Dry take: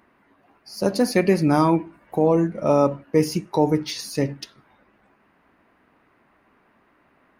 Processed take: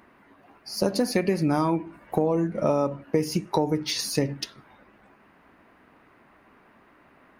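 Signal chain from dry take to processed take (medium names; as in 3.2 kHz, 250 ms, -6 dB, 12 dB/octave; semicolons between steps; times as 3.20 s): compression 6:1, threshold -24 dBFS, peak gain reduction 11.5 dB; trim +4 dB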